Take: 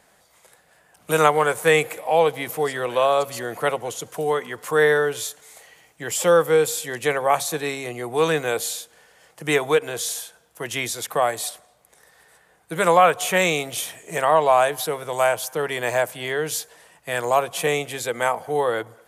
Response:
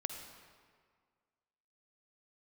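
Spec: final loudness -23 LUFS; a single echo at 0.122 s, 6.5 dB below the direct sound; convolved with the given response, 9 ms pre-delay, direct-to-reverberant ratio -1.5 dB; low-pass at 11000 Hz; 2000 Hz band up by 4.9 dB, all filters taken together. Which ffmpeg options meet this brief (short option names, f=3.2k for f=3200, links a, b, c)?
-filter_complex "[0:a]lowpass=11k,equalizer=f=2k:t=o:g=6,aecho=1:1:122:0.473,asplit=2[a][b];[1:a]atrim=start_sample=2205,adelay=9[c];[b][c]afir=irnorm=-1:irlink=0,volume=1.5dB[d];[a][d]amix=inputs=2:normalize=0,volume=-7.5dB"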